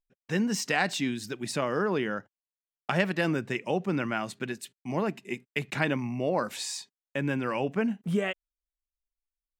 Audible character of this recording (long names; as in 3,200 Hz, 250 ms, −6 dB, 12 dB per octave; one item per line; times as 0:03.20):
background noise floor −96 dBFS
spectral slope −5.0 dB per octave